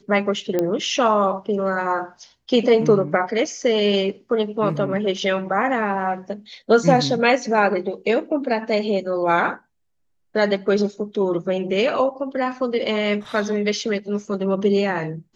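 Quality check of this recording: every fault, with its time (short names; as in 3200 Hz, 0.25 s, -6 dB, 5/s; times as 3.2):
0.59 pop -9 dBFS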